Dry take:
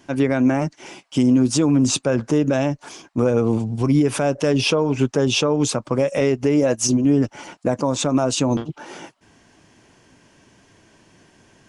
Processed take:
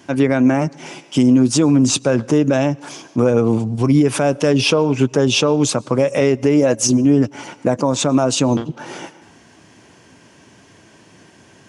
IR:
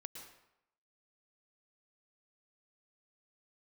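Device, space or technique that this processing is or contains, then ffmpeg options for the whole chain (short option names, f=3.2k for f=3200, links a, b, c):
compressed reverb return: -filter_complex "[0:a]highpass=74,asplit=2[a][b];[1:a]atrim=start_sample=2205[c];[b][c]afir=irnorm=-1:irlink=0,acompressor=threshold=-38dB:ratio=5,volume=-2dB[d];[a][d]amix=inputs=2:normalize=0,volume=3dB"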